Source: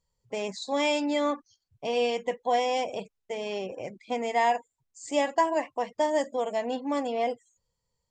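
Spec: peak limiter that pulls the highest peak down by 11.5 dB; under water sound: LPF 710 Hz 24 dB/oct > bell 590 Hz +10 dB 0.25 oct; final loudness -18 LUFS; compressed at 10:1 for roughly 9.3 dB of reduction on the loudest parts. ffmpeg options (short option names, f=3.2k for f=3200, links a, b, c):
-af "acompressor=threshold=-29dB:ratio=10,alimiter=level_in=6.5dB:limit=-24dB:level=0:latency=1,volume=-6.5dB,lowpass=f=710:w=0.5412,lowpass=f=710:w=1.3066,equalizer=f=590:t=o:w=0.25:g=10,volume=20dB"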